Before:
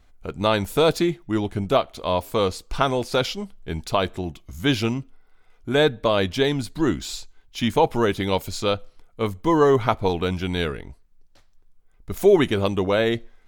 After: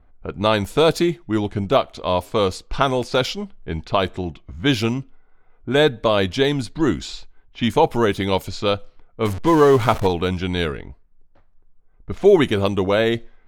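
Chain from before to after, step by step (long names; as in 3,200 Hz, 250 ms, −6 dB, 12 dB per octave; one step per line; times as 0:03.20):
0:09.25–0:10.07: converter with a step at zero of −27 dBFS
low-pass that shuts in the quiet parts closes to 1,300 Hz, open at −18.5 dBFS
level +2.5 dB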